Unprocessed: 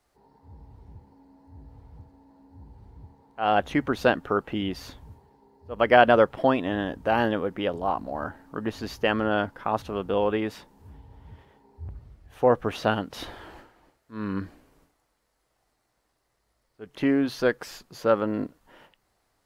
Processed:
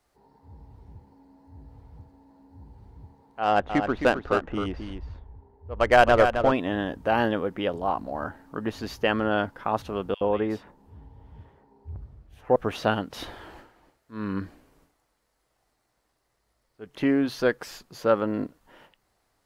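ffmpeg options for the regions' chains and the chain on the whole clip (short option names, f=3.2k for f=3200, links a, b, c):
-filter_complex "[0:a]asettb=1/sr,asplit=3[a][b][c];[a]atrim=end=3.434[d];[b]atrim=start=3.43:end=6.52,asetpts=PTS-STARTPTS,afade=t=in:d=0.004:c=qsin,afade=t=out:st=3.086:d=0.004:c=qsin,adynamicsmooth=sensitivity=2:basefreq=1.9k,asubboost=boost=11:cutoff=66,aecho=1:1:264:0.422,atrim=end_sample=136269[e];[c]atrim=start=6.516[f];[d][e]acrossfade=d=0.004:c1=hsin:c2=qsin[g];[g][f]acrossfade=d=0.004:c1=qsin:c2=hsin,asettb=1/sr,asplit=3[h][i][j];[h]atrim=end=10.144[k];[i]atrim=start=10.14:end=12.56,asetpts=PTS-STARTPTS,afade=t=in:d=0.004:c=qsin,afade=t=out:st=2.416:d=0.004:c=qsin,highshelf=f=3.2k:g=-9,acrossover=split=2200[l][m];[l]adelay=70[n];[n][m]amix=inputs=2:normalize=0,atrim=end_sample=106722[o];[j]atrim=start=12.556[p];[k][o]acrossfade=d=0.004:c1=hsin:c2=qsin[q];[q][p]acrossfade=d=0.004:c1=qsin:c2=hsin"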